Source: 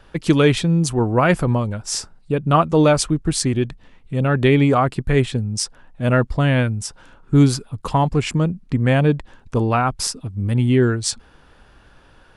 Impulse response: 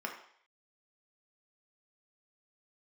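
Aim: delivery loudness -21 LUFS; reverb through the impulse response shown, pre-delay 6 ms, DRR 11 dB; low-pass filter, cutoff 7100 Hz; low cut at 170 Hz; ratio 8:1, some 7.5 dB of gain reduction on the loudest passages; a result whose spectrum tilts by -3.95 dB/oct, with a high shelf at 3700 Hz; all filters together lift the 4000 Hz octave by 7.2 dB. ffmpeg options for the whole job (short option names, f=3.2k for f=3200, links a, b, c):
-filter_complex "[0:a]highpass=170,lowpass=7.1k,highshelf=f=3.7k:g=8.5,equalizer=f=4k:t=o:g=4,acompressor=threshold=-17dB:ratio=8,asplit=2[a][b];[1:a]atrim=start_sample=2205,adelay=6[c];[b][c]afir=irnorm=-1:irlink=0,volume=-14dB[d];[a][d]amix=inputs=2:normalize=0,volume=2.5dB"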